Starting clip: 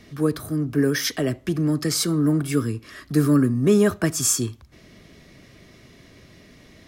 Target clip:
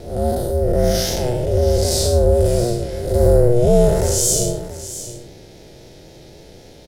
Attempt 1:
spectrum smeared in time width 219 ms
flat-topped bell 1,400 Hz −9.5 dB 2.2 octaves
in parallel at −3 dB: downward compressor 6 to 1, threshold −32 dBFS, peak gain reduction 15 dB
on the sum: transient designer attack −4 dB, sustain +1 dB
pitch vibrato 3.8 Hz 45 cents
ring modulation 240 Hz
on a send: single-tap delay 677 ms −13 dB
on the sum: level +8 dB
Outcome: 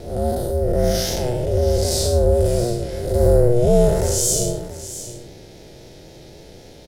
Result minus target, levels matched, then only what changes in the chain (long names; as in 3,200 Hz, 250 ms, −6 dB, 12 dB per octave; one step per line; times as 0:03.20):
downward compressor: peak gain reduction +8 dB
change: downward compressor 6 to 1, threshold −22.5 dBFS, peak gain reduction 7 dB